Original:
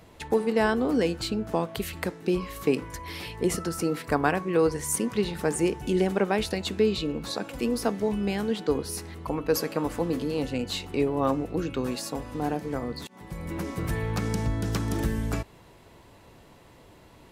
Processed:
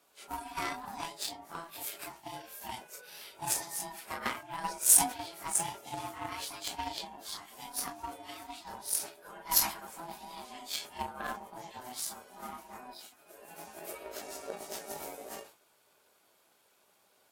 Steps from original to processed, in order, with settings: phase scrambler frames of 0.1 s; ring modulator 500 Hz; RIAA curve recording; added harmonics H 7 -19 dB, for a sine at -4.5 dBFS; sustainer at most 140 dB/s

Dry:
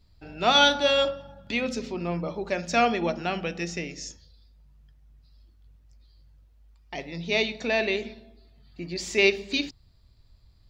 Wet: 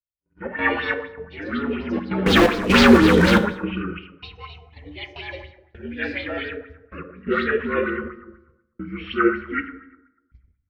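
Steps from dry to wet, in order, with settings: inharmonic rescaling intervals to 75%; echoes that change speed 0.186 s, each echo +4 st, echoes 3, each echo -6 dB; AGC gain up to 12.5 dB; tilt -2.5 dB/oct; 2.26–3.38 sample leveller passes 5; step gate "xxxx.xxx..xxx" 128 bpm -12 dB; gate -33 dBFS, range -46 dB; bell 660 Hz -13.5 dB 1.1 oct; plate-style reverb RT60 0.98 s, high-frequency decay 0.55×, DRR 6 dB; LFO bell 4.1 Hz 430–4600 Hz +12 dB; gain -8.5 dB

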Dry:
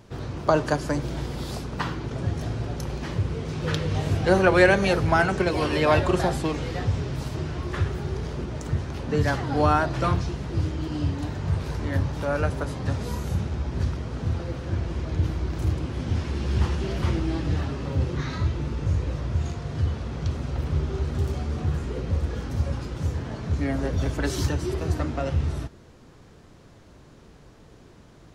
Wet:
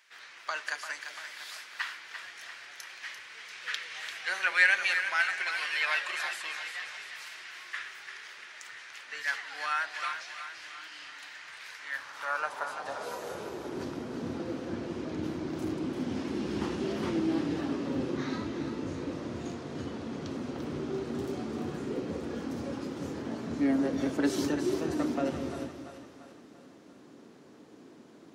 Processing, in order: high-pass sweep 1900 Hz -> 260 Hz, 11.77–13.99; split-band echo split 610 Hz, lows 0.189 s, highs 0.343 s, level -8.5 dB; gain -5 dB

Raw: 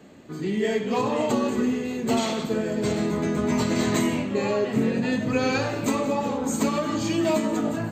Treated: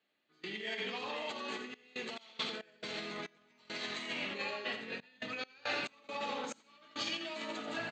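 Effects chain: negative-ratio compressor -28 dBFS, ratio -1; LPF 3900 Hz 24 dB/oct; differentiator; notch 1000 Hz, Q 19; echo 86 ms -9 dB; step gate "..xxxxxx.x.x.xx" 69 bpm -24 dB; gain +9 dB

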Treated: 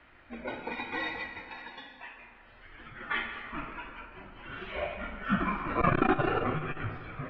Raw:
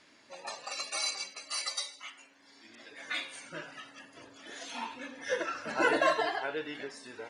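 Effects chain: mistuned SSB -310 Hz 240–3100 Hz; 1.4–3.01 compressor, threshold -47 dBFS, peak gain reduction 9.5 dB; on a send at -5 dB: reverb RT60 2.1 s, pre-delay 3 ms; on the sum: core saturation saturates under 240 Hz; gain +4.5 dB

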